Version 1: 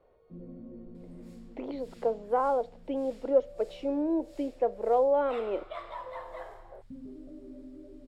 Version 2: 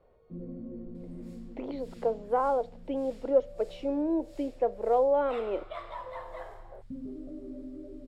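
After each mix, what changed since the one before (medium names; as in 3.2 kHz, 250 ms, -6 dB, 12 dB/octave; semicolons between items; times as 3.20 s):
first sound +4.5 dB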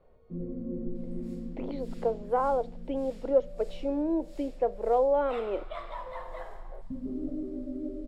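reverb: on, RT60 2.0 s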